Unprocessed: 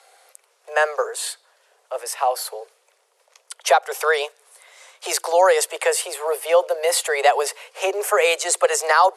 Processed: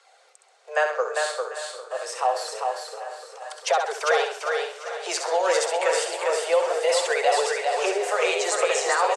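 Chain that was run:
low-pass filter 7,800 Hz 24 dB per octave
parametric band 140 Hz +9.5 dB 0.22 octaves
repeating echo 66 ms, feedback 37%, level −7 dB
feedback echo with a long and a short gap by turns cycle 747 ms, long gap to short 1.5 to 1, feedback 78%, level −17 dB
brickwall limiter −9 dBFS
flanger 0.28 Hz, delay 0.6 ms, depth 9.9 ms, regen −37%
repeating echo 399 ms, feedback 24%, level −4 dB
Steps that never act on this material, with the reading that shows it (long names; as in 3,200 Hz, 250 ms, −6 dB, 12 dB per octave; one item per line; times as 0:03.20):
parametric band 140 Hz: nothing at its input below 320 Hz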